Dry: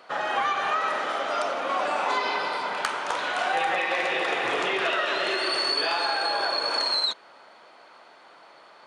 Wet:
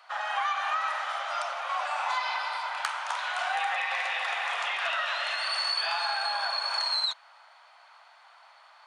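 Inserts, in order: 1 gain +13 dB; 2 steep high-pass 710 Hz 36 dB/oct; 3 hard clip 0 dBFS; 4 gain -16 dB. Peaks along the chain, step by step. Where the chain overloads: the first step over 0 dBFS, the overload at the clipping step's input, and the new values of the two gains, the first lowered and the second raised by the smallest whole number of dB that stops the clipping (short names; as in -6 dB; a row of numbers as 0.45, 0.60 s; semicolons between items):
+0.5, +3.5, 0.0, -16.0 dBFS; step 1, 3.5 dB; step 1 +9 dB, step 4 -12 dB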